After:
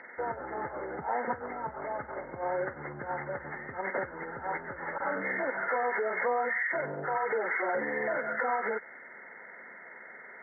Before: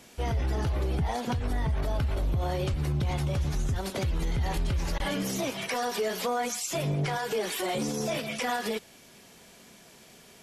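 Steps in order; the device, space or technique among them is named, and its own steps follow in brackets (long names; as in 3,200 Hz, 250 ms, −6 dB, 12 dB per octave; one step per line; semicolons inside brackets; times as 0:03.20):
hearing aid with frequency lowering (hearing-aid frequency compression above 1,200 Hz 4 to 1; downward compressor 3 to 1, threshold −30 dBFS, peak gain reduction 5 dB; loudspeaker in its box 320–5,200 Hz, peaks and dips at 520 Hz +7 dB, 900 Hz +9 dB, 2,700 Hz +7 dB, 4,600 Hz +9 dB)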